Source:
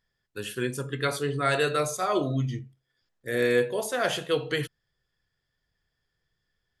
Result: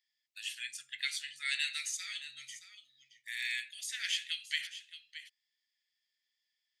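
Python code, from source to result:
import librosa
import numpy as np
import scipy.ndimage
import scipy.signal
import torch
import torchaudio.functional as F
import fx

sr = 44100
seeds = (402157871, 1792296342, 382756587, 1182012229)

y = scipy.signal.sosfilt(scipy.signal.ellip(4, 1.0, 50, 2000.0, 'highpass', fs=sr, output='sos'), x)
y = fx.peak_eq(y, sr, hz=11000.0, db=-14.5, octaves=0.3)
y = y + 10.0 ** (-13.0 / 20.0) * np.pad(y, (int(622 * sr / 1000.0), 0))[:len(y)]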